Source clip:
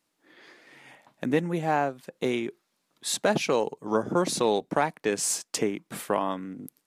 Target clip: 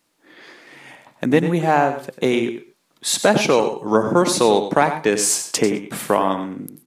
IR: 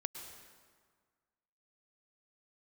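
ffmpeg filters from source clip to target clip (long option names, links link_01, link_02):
-filter_complex "[0:a]asplit=2[link_01][link_02];[link_02]adelay=93.29,volume=-10dB,highshelf=frequency=4000:gain=-2.1[link_03];[link_01][link_03]amix=inputs=2:normalize=0,asplit=2[link_04][link_05];[1:a]atrim=start_sample=2205,atrim=end_sample=6174[link_06];[link_05][link_06]afir=irnorm=-1:irlink=0,volume=4dB[link_07];[link_04][link_07]amix=inputs=2:normalize=0,volume=1.5dB"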